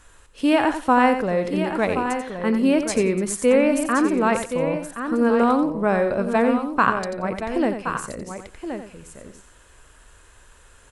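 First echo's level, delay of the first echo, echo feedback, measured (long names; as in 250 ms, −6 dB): −9.0 dB, 89 ms, repeats not evenly spaced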